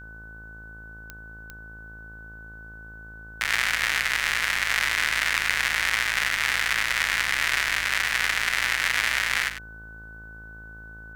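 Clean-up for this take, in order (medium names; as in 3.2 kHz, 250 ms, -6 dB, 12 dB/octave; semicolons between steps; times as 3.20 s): de-click; de-hum 54.8 Hz, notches 25; band-stop 1.5 kHz, Q 30; inverse comb 97 ms -10 dB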